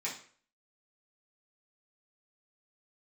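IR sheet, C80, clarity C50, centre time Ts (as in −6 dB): 12.5 dB, 7.5 dB, 25 ms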